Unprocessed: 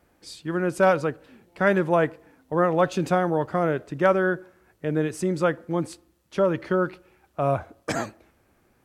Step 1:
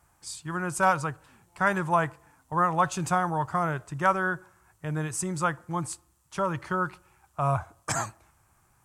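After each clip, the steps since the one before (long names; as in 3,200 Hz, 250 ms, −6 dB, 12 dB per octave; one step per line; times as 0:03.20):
octave-band graphic EQ 125/250/500/1,000/2,000/4,000/8,000 Hz +5/−11/−12/+8/−4/−5/+10 dB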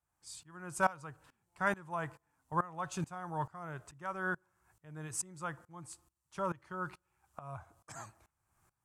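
tremolo with a ramp in dB swelling 2.3 Hz, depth 22 dB
level −4 dB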